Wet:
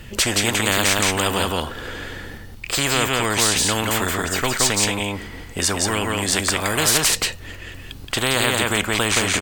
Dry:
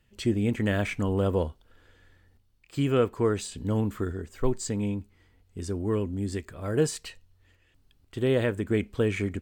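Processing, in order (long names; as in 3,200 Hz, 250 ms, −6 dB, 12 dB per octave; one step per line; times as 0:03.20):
single-tap delay 173 ms −4 dB
every bin compressed towards the loudest bin 4 to 1
level +7 dB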